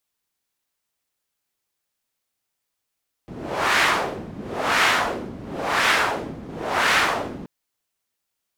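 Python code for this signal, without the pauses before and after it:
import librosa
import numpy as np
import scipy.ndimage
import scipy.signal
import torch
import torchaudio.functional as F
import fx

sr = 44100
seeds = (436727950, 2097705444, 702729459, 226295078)

y = fx.wind(sr, seeds[0], length_s=4.18, low_hz=210.0, high_hz=1800.0, q=1.2, gusts=4, swing_db=17.5)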